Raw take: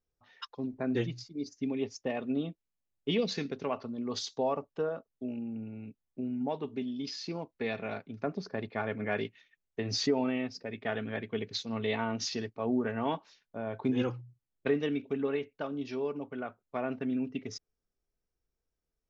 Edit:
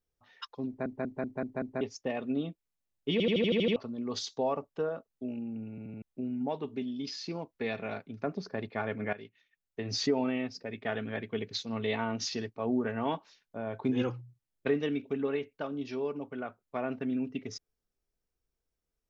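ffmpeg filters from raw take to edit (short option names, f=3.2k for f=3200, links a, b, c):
-filter_complex "[0:a]asplit=20[a][b][c][d][e][f][g][h][i][j][k][l][m][n][o][p][q][r][s][t];[a]atrim=end=0.862[u];[b]atrim=start=0.668:end=0.862[v];[c]atrim=start=0.668:end=0.862[w];[d]atrim=start=0.668:end=0.862[x];[e]atrim=start=0.668:end=0.862[y];[f]atrim=start=0.668:end=0.862[z];[g]atrim=start=1.808:end=3.202[aa];[h]atrim=start=3.118:end=3.202[ab];[i]atrim=start=3.118:end=3.202[ac];[j]atrim=start=3.118:end=3.202[ad];[k]atrim=start=3.118:end=3.202[ae];[l]atrim=start=3.118:end=3.202[af];[m]atrim=start=3.118:end=3.202[ag];[n]atrim=start=3.118:end=3.202[ah];[o]atrim=start=3.758:end=5.782[ai];[p]atrim=start=5.698:end=5.782[aj];[q]atrim=start=5.698:end=5.782[ak];[r]atrim=start=5.698:end=5.782[al];[s]atrim=start=6.018:end=9.13,asetpts=PTS-STARTPTS,afade=t=out:st=3.108:d=0.004:c=hsin:silence=0.149624[am];[t]atrim=start=9.13,asetpts=PTS-STARTPTS,afade=t=in:d=0.95:silence=0.149624[an];[u][v]acrossfade=d=0.004:c1=hsin:c2=hsin[ao];[ao][w]acrossfade=d=0.004:c1=hsin:c2=hsin[ap];[ap][x]acrossfade=d=0.004:c1=hsin:c2=hsin[aq];[aq][y]acrossfade=d=0.004:c1=hsin:c2=hsin[ar];[ar][z]acrossfade=d=0.004:c1=hsin:c2=hsin[as];[as][aa]acrossfade=d=0.004:c1=hsin:c2=hsin[at];[at][ab]acrossfade=d=0.004:c1=hsin:c2=hsin[au];[au][ac]acrossfade=d=0.004:c1=hsin:c2=hsin[av];[av][ad]acrossfade=d=0.004:c1=hsin:c2=hsin[aw];[aw][ae]acrossfade=d=0.004:c1=hsin:c2=hsin[ax];[ax][af]acrossfade=d=0.004:c1=hsin:c2=hsin[ay];[ay][ag]acrossfade=d=0.004:c1=hsin:c2=hsin[az];[az][ah]acrossfade=d=0.004:c1=hsin:c2=hsin[ba];[ba][ai]acrossfade=d=0.004:c1=hsin:c2=hsin[bb];[bb][aj]acrossfade=d=0.004:c1=hsin:c2=hsin[bc];[bc][ak]acrossfade=d=0.004:c1=hsin:c2=hsin[bd];[bd][al]acrossfade=d=0.004:c1=hsin:c2=hsin[be];[am][an]concat=n=2:v=0:a=1[bf];[be][bf]acrossfade=d=0.004:c1=hsin:c2=hsin"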